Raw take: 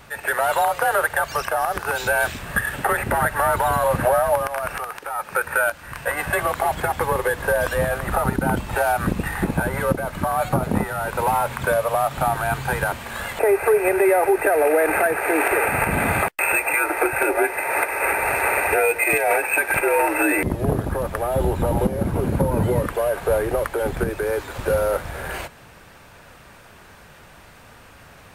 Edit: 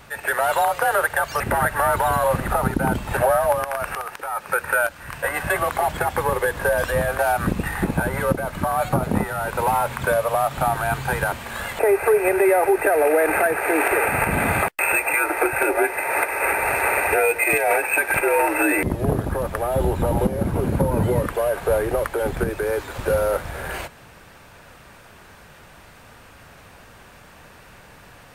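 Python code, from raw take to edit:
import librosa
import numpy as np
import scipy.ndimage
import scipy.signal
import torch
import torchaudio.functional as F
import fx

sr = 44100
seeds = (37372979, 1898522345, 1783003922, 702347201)

y = fx.edit(x, sr, fx.cut(start_s=1.4, length_s=1.6),
    fx.move(start_s=8.02, length_s=0.77, to_s=4.0), tone=tone)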